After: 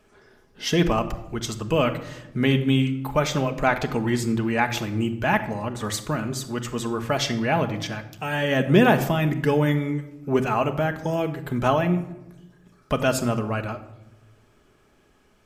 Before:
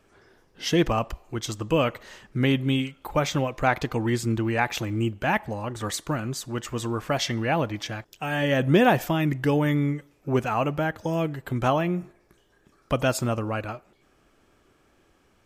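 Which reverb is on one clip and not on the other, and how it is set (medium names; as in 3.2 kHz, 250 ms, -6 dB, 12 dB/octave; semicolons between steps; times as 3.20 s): simulated room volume 3300 m³, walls furnished, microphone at 1.4 m; trim +1 dB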